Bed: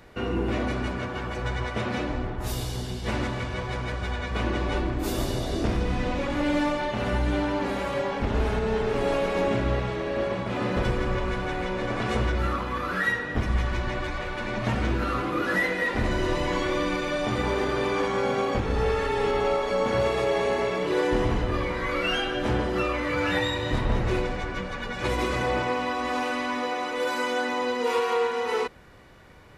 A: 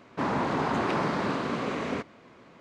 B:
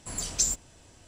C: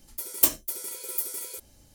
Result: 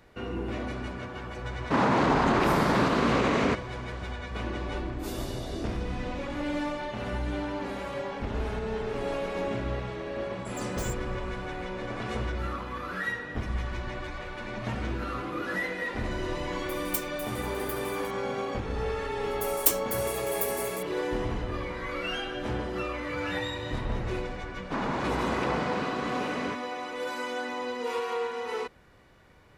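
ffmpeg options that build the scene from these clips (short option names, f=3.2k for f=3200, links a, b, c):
-filter_complex "[1:a]asplit=2[a][b];[3:a]asplit=2[c][d];[0:a]volume=-6.5dB[e];[a]alimiter=level_in=21dB:limit=-1dB:release=50:level=0:latency=1[f];[2:a]aeval=exprs='0.0562*(abs(mod(val(0)/0.0562+3,4)-2)-1)':c=same[g];[f]atrim=end=2.6,asetpts=PTS-STARTPTS,volume=-14dB,afade=t=in:d=0.004:c=hsin,afade=t=out:st=2.596:d=0.004:c=hsin,adelay=1530[h];[g]atrim=end=1.07,asetpts=PTS-STARTPTS,volume=-10.5dB,afade=t=in:d=0.004:c=hsin,afade=t=out:st=1.066:d=0.004:c=hsin,adelay=10390[i];[c]atrim=end=1.94,asetpts=PTS-STARTPTS,volume=-12dB,afade=t=in:d=0.004:c=hsin,afade=t=out:st=1.936:d=0.004:c=hsin,adelay=16510[j];[d]atrim=end=1.94,asetpts=PTS-STARTPTS,volume=-3dB,afade=t=in:d=0.004:c=hsin,afade=t=out:st=1.936:d=0.004:c=hsin,adelay=19230[k];[b]atrim=end=2.6,asetpts=PTS-STARTPTS,volume=-3dB,afade=t=in:d=0.004:c=hsin,afade=t=out:st=2.596:d=0.004:c=hsin,adelay=24530[l];[e][h][i][j][k][l]amix=inputs=6:normalize=0"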